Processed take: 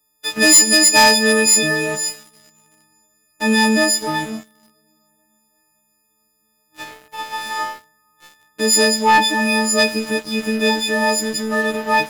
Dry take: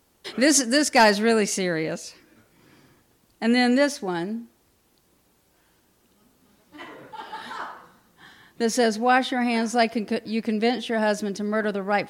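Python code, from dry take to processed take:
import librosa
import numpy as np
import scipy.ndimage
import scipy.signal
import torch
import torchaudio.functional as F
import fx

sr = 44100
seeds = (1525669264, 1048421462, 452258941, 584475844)

y = fx.freq_snap(x, sr, grid_st=6)
y = fx.rev_double_slope(y, sr, seeds[0], early_s=0.22, late_s=4.8, knee_db=-21, drr_db=9.5)
y = fx.leveller(y, sr, passes=3)
y = y * librosa.db_to_amplitude(-8.0)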